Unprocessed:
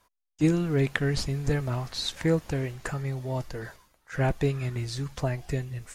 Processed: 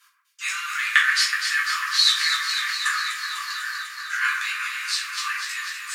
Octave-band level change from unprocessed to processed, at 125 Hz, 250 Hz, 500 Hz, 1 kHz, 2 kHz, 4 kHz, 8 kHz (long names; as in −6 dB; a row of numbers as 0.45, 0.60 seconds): below −40 dB, below −40 dB, below −40 dB, +9.5 dB, +16.0 dB, +15.5 dB, +13.5 dB